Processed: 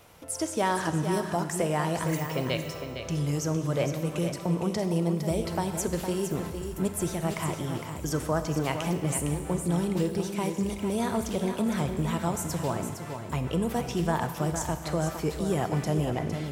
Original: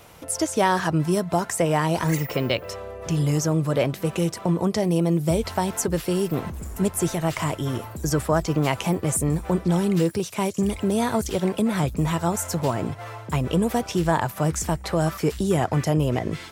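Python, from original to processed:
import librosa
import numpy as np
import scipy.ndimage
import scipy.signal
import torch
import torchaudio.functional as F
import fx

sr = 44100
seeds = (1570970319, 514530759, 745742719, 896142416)

p1 = x + fx.echo_single(x, sr, ms=459, db=-8.0, dry=0)
p2 = fx.rev_schroeder(p1, sr, rt60_s=1.7, comb_ms=31, drr_db=9.0)
y = p2 * librosa.db_to_amplitude(-6.5)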